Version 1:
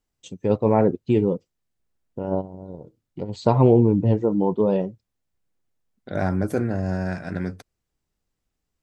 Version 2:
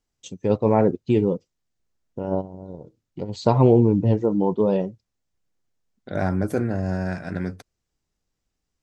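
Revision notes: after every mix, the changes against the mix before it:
first voice: add low-pass with resonance 6,500 Hz, resonance Q 1.7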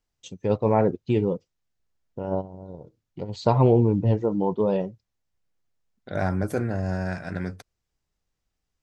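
first voice: add high-frequency loss of the air 57 metres
master: add parametric band 270 Hz −4.5 dB 1.6 octaves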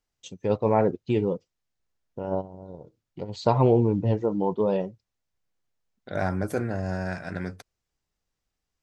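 master: add low-shelf EQ 230 Hz −4 dB

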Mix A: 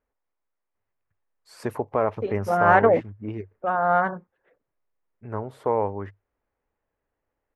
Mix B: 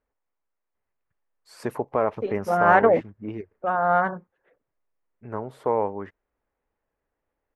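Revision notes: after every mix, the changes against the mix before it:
first voice: add parametric band 100 Hz −9.5 dB 0.29 octaves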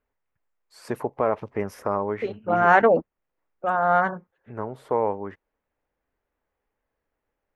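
first voice: entry −0.75 s
second voice: add high-shelf EQ 3,600 Hz +10.5 dB

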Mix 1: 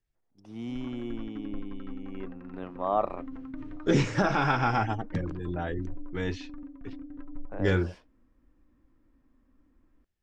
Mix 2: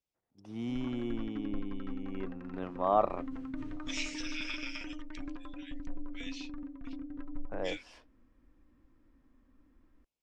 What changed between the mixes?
second voice: add Chebyshev high-pass filter 2,300 Hz, order 4
background: remove low-pass filter 2,600 Hz 6 dB per octave

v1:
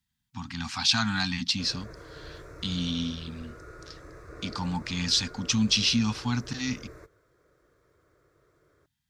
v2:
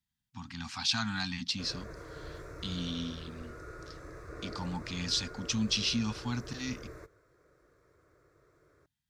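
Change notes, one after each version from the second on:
speech −6.5 dB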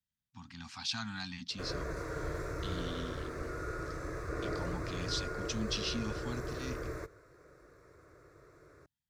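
speech −6.5 dB
background +7.0 dB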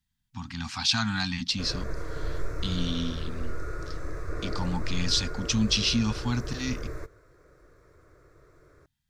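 speech +11.5 dB
master: remove high-pass filter 100 Hz 6 dB per octave

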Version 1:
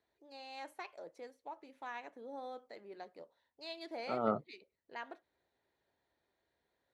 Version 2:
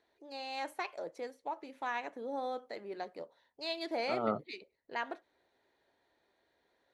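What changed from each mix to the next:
first voice +8.0 dB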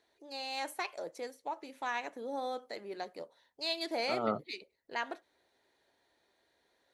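master: add high-shelf EQ 4,800 Hz +12 dB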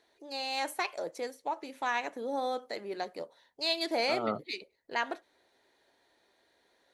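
first voice +4.5 dB

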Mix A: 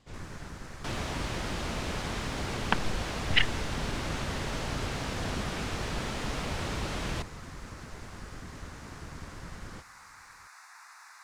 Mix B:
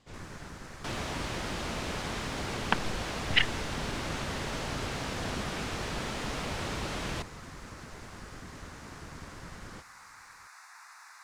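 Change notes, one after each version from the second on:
master: add low-shelf EQ 120 Hz −5 dB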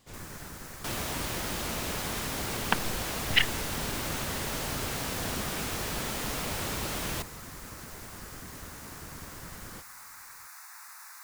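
master: remove high-frequency loss of the air 80 metres

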